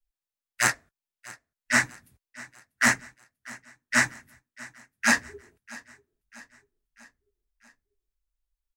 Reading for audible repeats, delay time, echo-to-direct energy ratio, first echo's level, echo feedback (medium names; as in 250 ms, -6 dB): 3, 642 ms, -19.5 dB, -21.0 dB, 54%